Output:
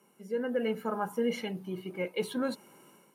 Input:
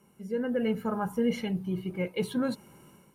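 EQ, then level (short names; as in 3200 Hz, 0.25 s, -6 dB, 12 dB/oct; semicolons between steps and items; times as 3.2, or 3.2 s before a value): HPF 280 Hz 12 dB/oct; 0.0 dB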